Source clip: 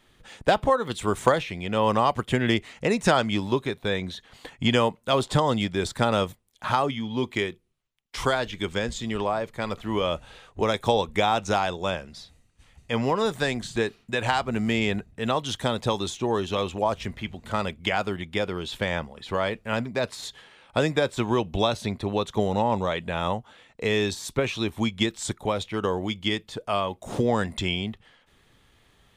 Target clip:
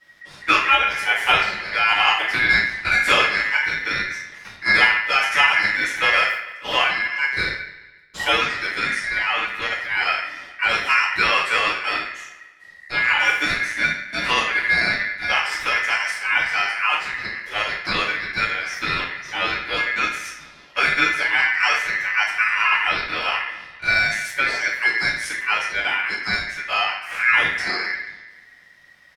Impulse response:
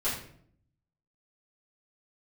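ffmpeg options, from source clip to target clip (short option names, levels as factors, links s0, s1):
-filter_complex "[0:a]asplit=2[s0][s1];[s1]adelay=143,lowpass=f=4100:p=1,volume=0.15,asplit=2[s2][s3];[s3]adelay=143,lowpass=f=4100:p=1,volume=0.54,asplit=2[s4][s5];[s5]adelay=143,lowpass=f=4100:p=1,volume=0.54,asplit=2[s6][s7];[s7]adelay=143,lowpass=f=4100:p=1,volume=0.54,asplit=2[s8][s9];[s9]adelay=143,lowpass=f=4100:p=1,volume=0.54[s10];[s0][s2][s4][s6][s8][s10]amix=inputs=6:normalize=0[s11];[1:a]atrim=start_sample=2205[s12];[s11][s12]afir=irnorm=-1:irlink=0,aeval=exprs='val(0)*sin(2*PI*1900*n/s)':c=same,volume=0.841"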